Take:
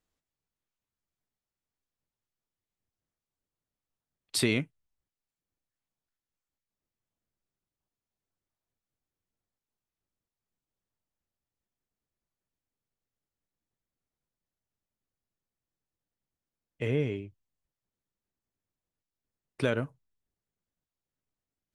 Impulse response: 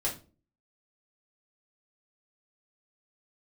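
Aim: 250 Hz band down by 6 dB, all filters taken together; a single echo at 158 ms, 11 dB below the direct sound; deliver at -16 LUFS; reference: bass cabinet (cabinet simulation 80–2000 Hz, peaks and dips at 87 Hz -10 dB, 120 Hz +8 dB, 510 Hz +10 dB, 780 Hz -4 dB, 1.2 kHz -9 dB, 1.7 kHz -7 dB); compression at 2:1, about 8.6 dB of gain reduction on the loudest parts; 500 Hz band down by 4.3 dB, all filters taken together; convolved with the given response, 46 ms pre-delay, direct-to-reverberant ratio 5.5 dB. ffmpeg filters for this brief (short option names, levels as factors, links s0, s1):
-filter_complex "[0:a]equalizer=f=250:t=o:g=-6.5,equalizer=f=500:t=o:g=-8.5,acompressor=threshold=0.00891:ratio=2,aecho=1:1:158:0.282,asplit=2[s0][s1];[1:a]atrim=start_sample=2205,adelay=46[s2];[s1][s2]afir=irnorm=-1:irlink=0,volume=0.282[s3];[s0][s3]amix=inputs=2:normalize=0,highpass=f=80:w=0.5412,highpass=f=80:w=1.3066,equalizer=f=87:t=q:w=4:g=-10,equalizer=f=120:t=q:w=4:g=8,equalizer=f=510:t=q:w=4:g=10,equalizer=f=780:t=q:w=4:g=-4,equalizer=f=1200:t=q:w=4:g=-9,equalizer=f=1700:t=q:w=4:g=-7,lowpass=f=2000:w=0.5412,lowpass=f=2000:w=1.3066,volume=15"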